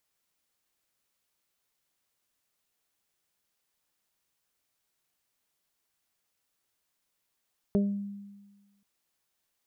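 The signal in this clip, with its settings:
harmonic partials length 1.08 s, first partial 201 Hz, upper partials −3/−11.5 dB, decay 1.33 s, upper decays 0.27/0.38 s, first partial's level −21 dB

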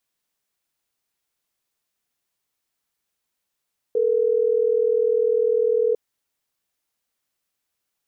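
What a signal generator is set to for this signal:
call progress tone ringback tone, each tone −19.5 dBFS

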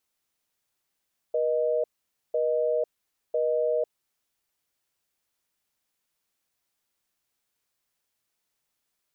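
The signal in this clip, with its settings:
call progress tone busy tone, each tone −25 dBFS 2.89 s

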